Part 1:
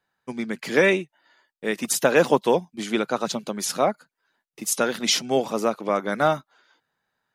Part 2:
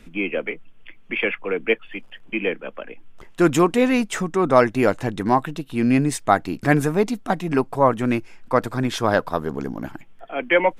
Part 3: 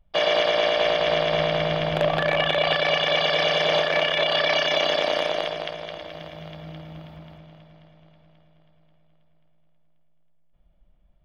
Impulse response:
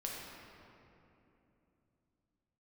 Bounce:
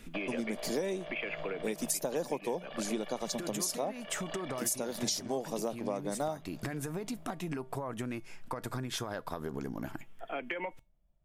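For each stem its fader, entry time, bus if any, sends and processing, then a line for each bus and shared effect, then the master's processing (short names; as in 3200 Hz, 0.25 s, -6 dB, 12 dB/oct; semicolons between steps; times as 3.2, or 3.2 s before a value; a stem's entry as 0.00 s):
-2.5 dB, 0.00 s, no bus, no send, band shelf 2000 Hz -12.5 dB
0.0 dB, 0.00 s, bus A, no send, limiter -11 dBFS, peak gain reduction 9.5 dB; compressor, threshold -24 dBFS, peak gain reduction 9 dB
-7.0 dB, 0.00 s, bus A, no send, LPF 1500 Hz 6 dB/oct; compressor 4:1, threshold -27 dBFS, peak gain reduction 8 dB
bus A: 0.0 dB, resonator 130 Hz, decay 0.25 s, harmonics odd, mix 40%; compressor, threshold -33 dBFS, peak gain reduction 7.5 dB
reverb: off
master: high shelf 5600 Hz +8.5 dB; compressor 6:1, threshold -31 dBFS, peak gain reduction 15.5 dB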